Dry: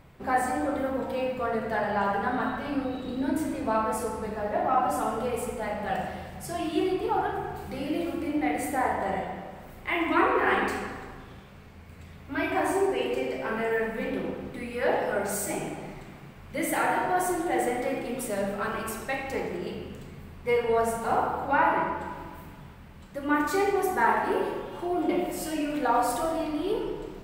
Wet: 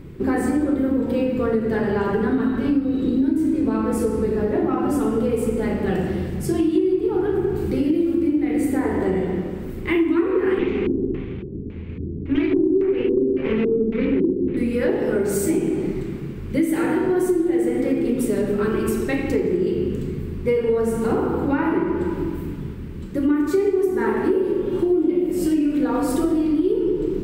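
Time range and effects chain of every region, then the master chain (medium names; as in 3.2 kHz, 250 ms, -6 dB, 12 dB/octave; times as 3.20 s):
10.59–14.57 s: comb filter that takes the minimum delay 0.3 ms + LFO low-pass square 1.8 Hz 340–2200 Hz
whole clip: resonant low shelf 500 Hz +10.5 dB, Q 3; hum notches 50/100/150/200/250/300/350/400 Hz; compression 6:1, threshold -22 dBFS; trim +5 dB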